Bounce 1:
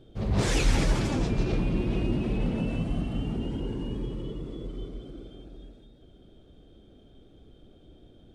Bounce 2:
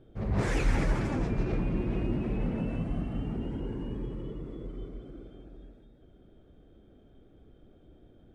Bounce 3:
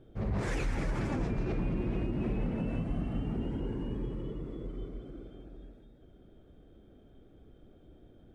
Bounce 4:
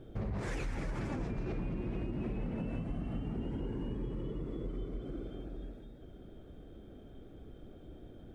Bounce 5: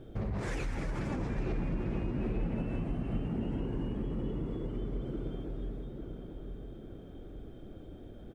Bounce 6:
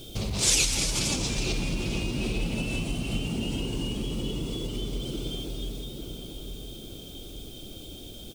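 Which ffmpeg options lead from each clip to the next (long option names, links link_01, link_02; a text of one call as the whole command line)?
ffmpeg -i in.wav -af "highshelf=frequency=2600:width_type=q:width=1.5:gain=-7.5,volume=-3dB" out.wav
ffmpeg -i in.wav -af "alimiter=limit=-23.5dB:level=0:latency=1:release=111" out.wav
ffmpeg -i in.wav -af "acompressor=threshold=-41dB:ratio=4,volume=5.5dB" out.wav
ffmpeg -i in.wav -filter_complex "[0:a]asplit=2[link_01][link_02];[link_02]adelay=846,lowpass=frequency=2000:poles=1,volume=-6.5dB,asplit=2[link_03][link_04];[link_04]adelay=846,lowpass=frequency=2000:poles=1,volume=0.51,asplit=2[link_05][link_06];[link_06]adelay=846,lowpass=frequency=2000:poles=1,volume=0.51,asplit=2[link_07][link_08];[link_08]adelay=846,lowpass=frequency=2000:poles=1,volume=0.51,asplit=2[link_09][link_10];[link_10]adelay=846,lowpass=frequency=2000:poles=1,volume=0.51,asplit=2[link_11][link_12];[link_12]adelay=846,lowpass=frequency=2000:poles=1,volume=0.51[link_13];[link_01][link_03][link_05][link_07][link_09][link_11][link_13]amix=inputs=7:normalize=0,volume=2dB" out.wav
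ffmpeg -i in.wav -af "aexciter=amount=15.1:drive=6.9:freq=2800,volume=3.5dB" out.wav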